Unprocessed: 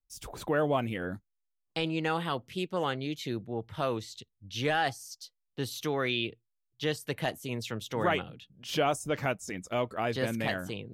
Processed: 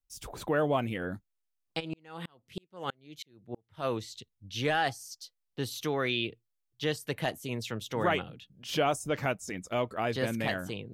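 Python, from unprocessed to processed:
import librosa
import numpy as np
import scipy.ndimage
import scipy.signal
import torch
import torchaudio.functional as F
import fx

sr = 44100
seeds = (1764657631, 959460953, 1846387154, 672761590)

y = fx.tremolo_decay(x, sr, direction='swelling', hz=3.1, depth_db=39, at=(1.79, 3.84), fade=0.02)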